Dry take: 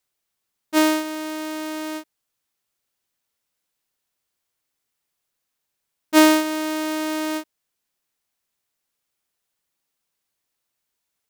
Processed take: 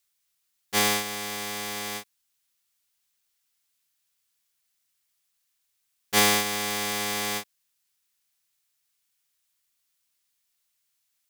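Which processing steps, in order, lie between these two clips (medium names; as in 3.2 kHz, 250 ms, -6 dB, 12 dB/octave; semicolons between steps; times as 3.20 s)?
cycle switcher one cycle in 3, inverted; amplifier tone stack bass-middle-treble 5-5-5; in parallel at +1 dB: peak limiter -17.5 dBFS, peak gain reduction 10 dB; on the sum: trim +3.5 dB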